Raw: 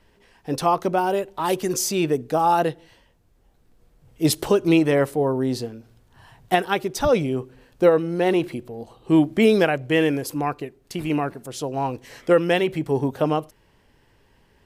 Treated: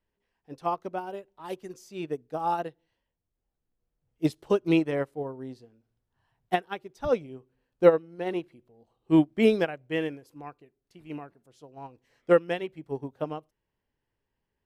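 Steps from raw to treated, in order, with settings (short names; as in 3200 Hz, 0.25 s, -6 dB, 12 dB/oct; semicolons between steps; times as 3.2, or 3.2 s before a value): bell 13000 Hz -7.5 dB 1.7 oct; upward expander 2.5:1, over -27 dBFS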